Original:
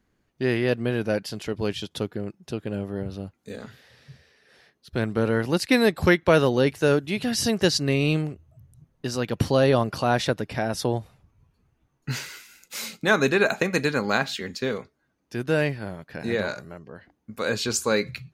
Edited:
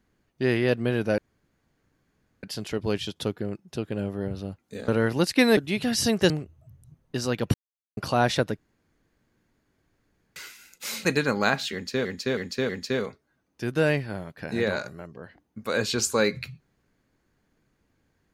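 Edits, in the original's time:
1.18 insert room tone 1.25 s
3.63–5.21 cut
5.9–6.97 cut
7.7–8.2 cut
9.44–9.87 mute
10.47–12.26 room tone
12.95–13.73 cut
14.41–14.73 loop, 4 plays

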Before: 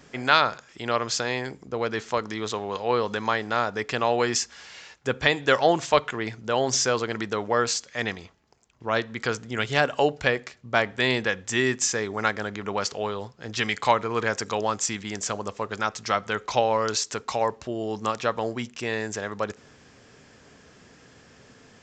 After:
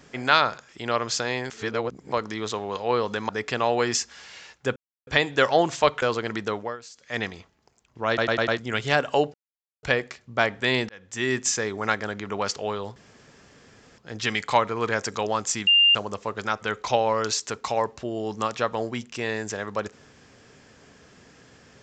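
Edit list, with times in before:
1.5–2.12 reverse
3.29–3.7 cut
5.17 insert silence 0.31 s
6.12–6.87 cut
7.37–8.03 dip -18.5 dB, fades 0.25 s
8.93 stutter in place 0.10 s, 5 plays
10.19 insert silence 0.49 s
11.25–11.74 fade in
13.32 insert room tone 1.02 s
15.01–15.29 bleep 2800 Hz -13.5 dBFS
15.95–16.25 cut

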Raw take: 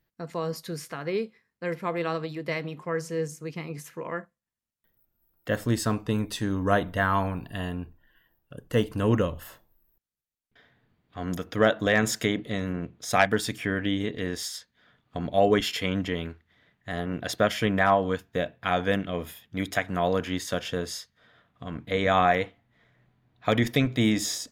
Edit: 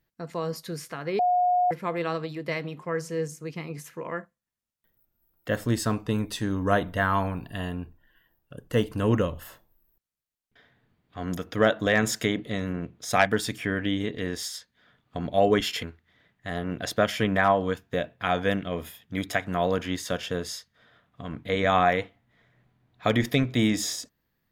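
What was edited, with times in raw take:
1.19–1.71 bleep 720 Hz -19 dBFS
15.83–16.25 cut

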